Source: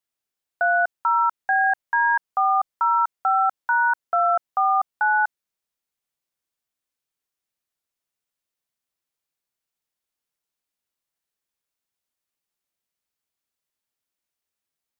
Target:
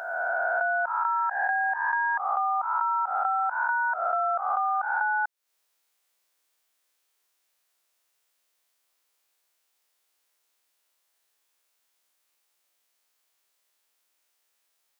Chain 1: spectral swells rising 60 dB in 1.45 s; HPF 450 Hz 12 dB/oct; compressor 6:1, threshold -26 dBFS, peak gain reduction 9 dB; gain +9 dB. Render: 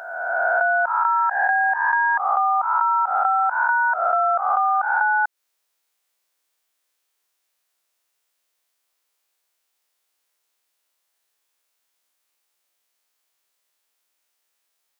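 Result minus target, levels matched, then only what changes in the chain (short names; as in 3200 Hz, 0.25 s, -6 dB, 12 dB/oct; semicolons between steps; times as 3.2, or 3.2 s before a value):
compressor: peak gain reduction -6.5 dB
change: compressor 6:1, threshold -34 dBFS, peak gain reduction 16 dB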